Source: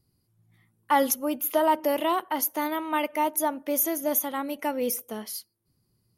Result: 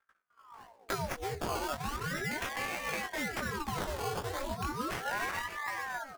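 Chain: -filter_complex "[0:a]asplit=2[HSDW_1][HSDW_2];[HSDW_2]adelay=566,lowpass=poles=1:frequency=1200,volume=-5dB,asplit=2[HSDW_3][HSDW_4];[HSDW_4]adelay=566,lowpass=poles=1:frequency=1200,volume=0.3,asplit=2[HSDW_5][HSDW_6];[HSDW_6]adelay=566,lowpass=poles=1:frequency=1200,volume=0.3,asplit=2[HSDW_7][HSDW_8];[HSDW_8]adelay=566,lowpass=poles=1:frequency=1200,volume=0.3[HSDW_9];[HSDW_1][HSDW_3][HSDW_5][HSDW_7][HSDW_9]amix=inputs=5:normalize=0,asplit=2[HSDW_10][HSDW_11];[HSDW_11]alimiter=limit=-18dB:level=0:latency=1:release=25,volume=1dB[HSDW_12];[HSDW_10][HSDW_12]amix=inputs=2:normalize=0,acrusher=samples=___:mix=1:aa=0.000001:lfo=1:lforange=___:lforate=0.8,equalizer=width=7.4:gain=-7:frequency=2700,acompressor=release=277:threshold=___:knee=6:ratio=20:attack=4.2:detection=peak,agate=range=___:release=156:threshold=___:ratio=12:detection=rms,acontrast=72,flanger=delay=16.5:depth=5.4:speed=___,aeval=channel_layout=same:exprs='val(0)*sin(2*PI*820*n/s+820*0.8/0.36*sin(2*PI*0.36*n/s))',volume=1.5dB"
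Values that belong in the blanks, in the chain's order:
16, 16, -33dB, -27dB, -60dB, 1.4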